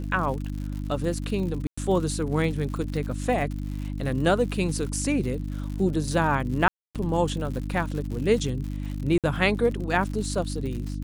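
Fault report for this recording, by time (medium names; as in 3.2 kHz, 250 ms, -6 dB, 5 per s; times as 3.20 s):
crackle 110 per s -33 dBFS
hum 50 Hz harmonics 6 -31 dBFS
1.67–1.77 s: dropout 105 ms
6.68–6.95 s: dropout 267 ms
9.18–9.24 s: dropout 57 ms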